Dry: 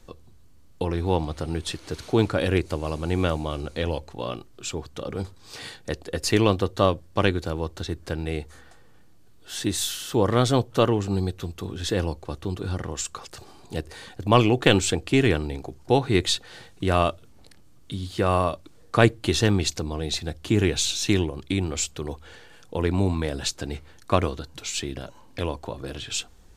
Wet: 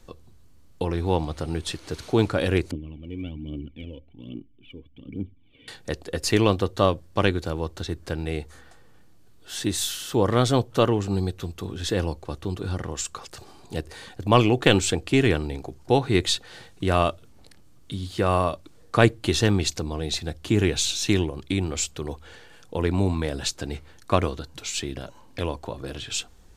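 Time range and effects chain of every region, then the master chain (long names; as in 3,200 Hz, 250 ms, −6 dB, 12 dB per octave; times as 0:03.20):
0:02.71–0:05.68: formant resonators in series i + phase shifter 1.2 Hz, delay 2.1 ms, feedback 64%
whole clip: no processing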